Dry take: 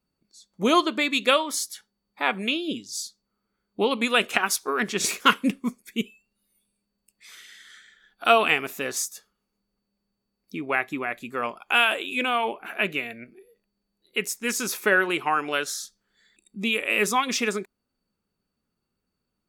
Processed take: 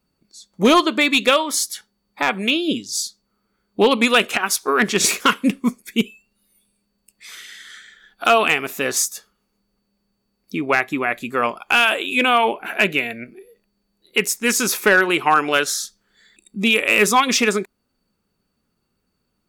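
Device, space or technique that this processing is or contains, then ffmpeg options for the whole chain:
limiter into clipper: -filter_complex "[0:a]asettb=1/sr,asplit=3[s0][s1][s2];[s0]atrim=end=12.554[s3];[s1]atrim=start=12.55:end=13.1,asetpts=PTS-STARTPTS,afade=t=in:d=0.004:c=qsin,afade=t=out:st=0.546:d=0.004:c=qsin,bandreject=f=1200:w=8.5[s4];[s2]atrim=start=13.096[s5];[s3][s4]acrossfade=d=0.004:c1=hsin:c2=qsin[s6];[s6][s5]acrossfade=d=0.004:c1=qsin:c2=hsin,alimiter=limit=0.282:level=0:latency=1:release=411,asoftclip=type=hard:threshold=0.178,volume=2.66"

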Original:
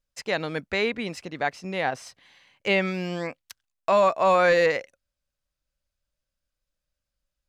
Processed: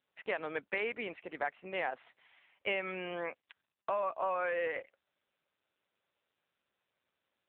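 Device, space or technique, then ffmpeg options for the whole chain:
voicemail: -af "highpass=420,lowpass=3100,acompressor=threshold=0.0447:ratio=8,volume=0.75" -ar 8000 -c:a libopencore_amrnb -b:a 6700

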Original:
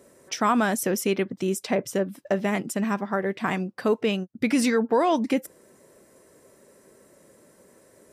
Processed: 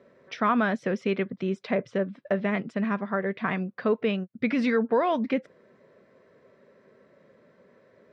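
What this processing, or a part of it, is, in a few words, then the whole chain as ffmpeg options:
guitar cabinet: -af "highpass=110,equalizer=f=320:t=q:w=4:g=-9,equalizer=f=830:t=q:w=4:g=-7,equalizer=f=2900:t=q:w=4:g=-5,lowpass=f=3500:w=0.5412,lowpass=f=3500:w=1.3066"

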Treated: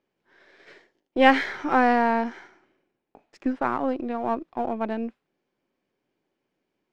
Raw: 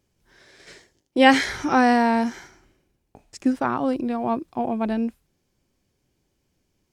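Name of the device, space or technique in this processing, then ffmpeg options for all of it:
crystal radio: -af "highpass=280,lowpass=2600,aeval=exprs='if(lt(val(0),0),0.708*val(0),val(0))':c=same"

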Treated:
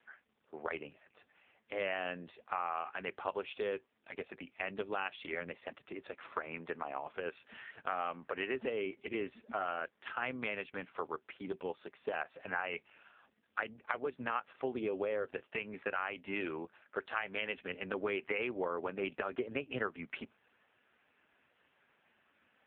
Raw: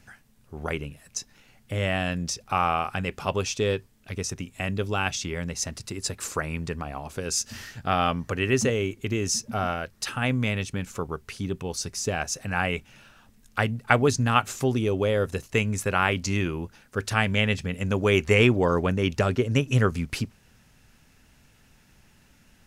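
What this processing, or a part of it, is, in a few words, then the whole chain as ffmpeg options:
voicemail: -filter_complex "[0:a]highpass=100,asettb=1/sr,asplit=3[s0][s1][s2];[s0]atrim=end=16.454[s3];[s1]atrim=start=16.45:end=17.22,asetpts=PTS-STARTPTS,afade=t=in:d=0.004:c=qsin,afade=t=out:st=0.766:d=0.004:c=qsin,lowshelf=f=140:g=-2.5[s4];[s2]atrim=start=17.216[s5];[s3][s4]acrossfade=d=0.004:c1=hsin:c2=qsin[s6];[s6][s5]acrossfade=d=0.004:c1=qsin:c2=hsin,highpass=410,lowpass=2700,acompressor=threshold=0.0355:ratio=12,volume=0.841" -ar 8000 -c:a libopencore_amrnb -b:a 5150

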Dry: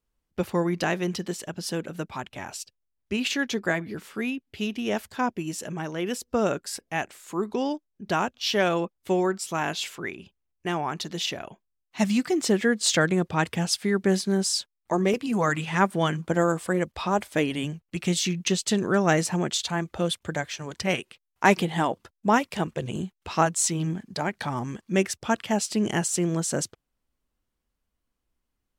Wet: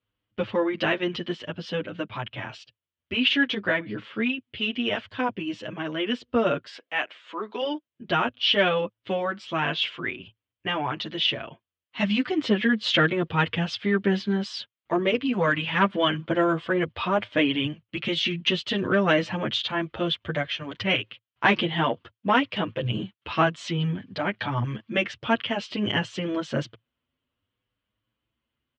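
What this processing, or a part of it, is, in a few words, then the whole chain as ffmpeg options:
barber-pole flanger into a guitar amplifier: -filter_complex "[0:a]asplit=2[s0][s1];[s1]adelay=7.9,afreqshift=0.58[s2];[s0][s2]amix=inputs=2:normalize=1,asoftclip=type=tanh:threshold=0.224,highpass=100,equalizer=f=110:t=q:w=4:g=9,equalizer=f=180:t=q:w=4:g=-7,equalizer=f=390:t=q:w=4:g=-5,equalizer=f=790:t=q:w=4:g=-7,equalizer=f=3100:t=q:w=4:g=8,lowpass=f=3500:w=0.5412,lowpass=f=3500:w=1.3066,asplit=3[s3][s4][s5];[s3]afade=t=out:st=6.67:d=0.02[s6];[s4]highpass=460,afade=t=in:st=6.67:d=0.02,afade=t=out:st=7.61:d=0.02[s7];[s5]afade=t=in:st=7.61:d=0.02[s8];[s6][s7][s8]amix=inputs=3:normalize=0,volume=2.11"

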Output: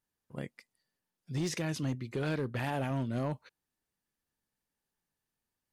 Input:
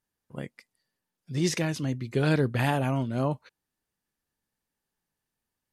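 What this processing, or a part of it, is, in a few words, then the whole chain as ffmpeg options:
limiter into clipper: -filter_complex "[0:a]asettb=1/sr,asplit=3[s0][s1][s2];[s0]atrim=end=1.954[s3];[s1]atrim=start=1.95:end=2.91,asetpts=PTS-STARTPTS,afade=t=in:d=0.004:c=qsin,afade=t=out:st=0.956:d=0.004:c=qsin,bass=f=250:g=-3,treble=f=4000:g=-3[s4];[s2]atrim=start=2.906[s5];[s3][s4]acrossfade=d=0.004:c1=hsin:c2=qsin[s6];[s6][s5]acrossfade=d=0.004:c1=qsin:c2=hsin,alimiter=limit=0.0944:level=0:latency=1:release=133,asoftclip=type=hard:threshold=0.0631,volume=0.708"

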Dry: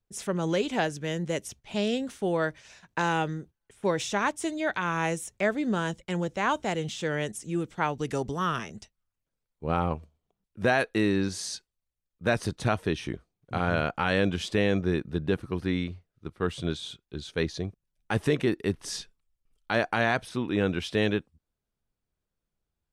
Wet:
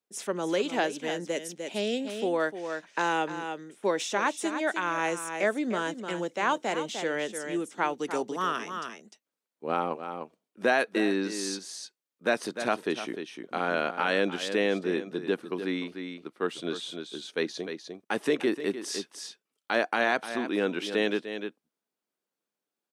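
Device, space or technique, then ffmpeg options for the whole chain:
ducked delay: -filter_complex "[0:a]asplit=3[s0][s1][s2];[s1]adelay=301,volume=0.531[s3];[s2]apad=whole_len=1024258[s4];[s3][s4]sidechaincompress=threshold=0.0316:ratio=8:attack=35:release=469[s5];[s0][s5]amix=inputs=2:normalize=0,highpass=f=240:w=0.5412,highpass=f=240:w=1.3066,asettb=1/sr,asplit=3[s6][s7][s8];[s6]atrim=end=1.324[s9];[s7]atrim=start=1.32:end=2.08,asetpts=PTS-STARTPTS,afade=t=in:d=0.004:c=qsin,afade=t=out:st=0.756:d=0.004:c=qsin,equalizer=f=1100:t=o:w=0.86:g=-5.5[s10];[s8]atrim=start=2.076[s11];[s9][s10]acrossfade=d=0.004:c1=hsin:c2=qsin[s12];[s12][s11]acrossfade=d=0.004:c1=qsin:c2=hsin"

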